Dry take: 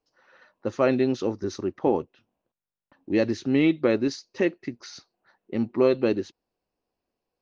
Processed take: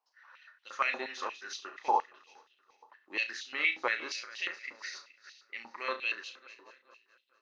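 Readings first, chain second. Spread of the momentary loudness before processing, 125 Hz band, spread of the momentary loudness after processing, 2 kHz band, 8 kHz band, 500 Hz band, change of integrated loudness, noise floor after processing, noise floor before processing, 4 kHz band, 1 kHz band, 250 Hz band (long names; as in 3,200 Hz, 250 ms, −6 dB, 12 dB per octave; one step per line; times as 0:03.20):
16 LU, below −35 dB, 17 LU, +3.0 dB, can't be measured, −19.0 dB, −9.0 dB, −73 dBFS, below −85 dBFS, 0.0 dB, +2.0 dB, −28.5 dB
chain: feedback delay that plays each chunk backwards 213 ms, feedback 56%, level −13 dB
flutter between parallel walls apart 5.9 metres, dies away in 0.24 s
high-pass on a step sequencer 8.5 Hz 920–3,100 Hz
level −4.5 dB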